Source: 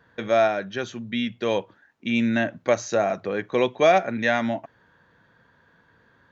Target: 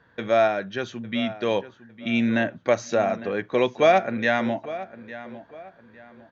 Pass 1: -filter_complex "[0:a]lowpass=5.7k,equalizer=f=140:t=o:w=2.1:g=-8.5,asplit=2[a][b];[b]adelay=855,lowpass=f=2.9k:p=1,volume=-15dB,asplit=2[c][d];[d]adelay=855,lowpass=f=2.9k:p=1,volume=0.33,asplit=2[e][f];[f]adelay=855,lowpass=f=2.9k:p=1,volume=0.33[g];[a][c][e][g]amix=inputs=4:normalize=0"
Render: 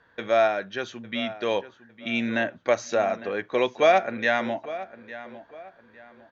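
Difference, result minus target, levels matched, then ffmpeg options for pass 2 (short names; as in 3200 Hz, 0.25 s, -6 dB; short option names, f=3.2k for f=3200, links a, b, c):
125 Hz band -6.0 dB
-filter_complex "[0:a]lowpass=5.7k,asplit=2[a][b];[b]adelay=855,lowpass=f=2.9k:p=1,volume=-15dB,asplit=2[c][d];[d]adelay=855,lowpass=f=2.9k:p=1,volume=0.33,asplit=2[e][f];[f]adelay=855,lowpass=f=2.9k:p=1,volume=0.33[g];[a][c][e][g]amix=inputs=4:normalize=0"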